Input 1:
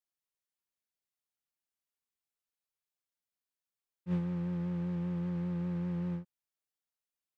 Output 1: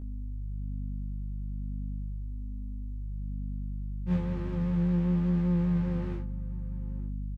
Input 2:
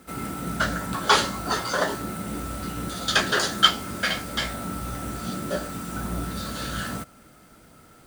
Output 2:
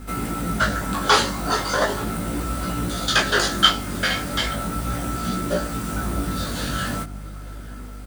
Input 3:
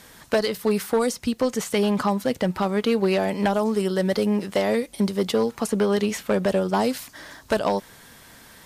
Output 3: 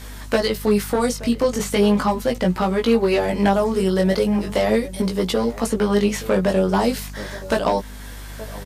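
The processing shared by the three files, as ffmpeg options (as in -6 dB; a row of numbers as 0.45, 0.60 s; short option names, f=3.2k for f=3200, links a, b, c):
-filter_complex "[0:a]asplit=2[a][b];[b]acompressor=threshold=-35dB:ratio=6,volume=-1dB[c];[a][c]amix=inputs=2:normalize=0,aeval=exprs='val(0)+0.0141*(sin(2*PI*50*n/s)+sin(2*PI*2*50*n/s)/2+sin(2*PI*3*50*n/s)/3+sin(2*PI*4*50*n/s)/4+sin(2*PI*5*50*n/s)/5)':c=same,asplit=2[d][e];[e]adelay=874.6,volume=-17dB,highshelf=f=4k:g=-19.7[f];[d][f]amix=inputs=2:normalize=0,flanger=delay=16.5:depth=5:speed=0.38,volume=4.5dB"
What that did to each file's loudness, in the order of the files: +3.0, +3.5, +3.5 LU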